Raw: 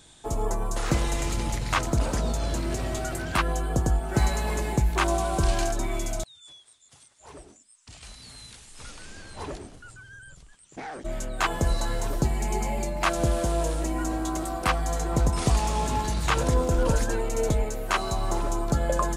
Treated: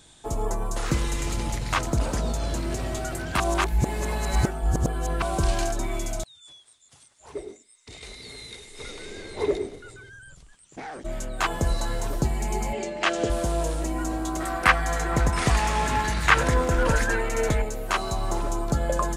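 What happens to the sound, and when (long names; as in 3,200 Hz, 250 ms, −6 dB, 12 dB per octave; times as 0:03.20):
0:00.87–0:01.27: parametric band 690 Hz −11 dB 0.44 octaves
0:03.40–0:05.22: reverse
0:07.35–0:10.10: hollow resonant body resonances 410/2,100/3,700 Hz, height 18 dB, ringing for 30 ms
0:12.73–0:13.30: loudspeaker in its box 150–7,600 Hz, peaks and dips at 150 Hz −9 dB, 430 Hz +9 dB, 1,000 Hz −5 dB, 1,800 Hz +5 dB, 3,000 Hz +7 dB
0:14.40–0:17.62: parametric band 1,800 Hz +12.5 dB 1.2 octaves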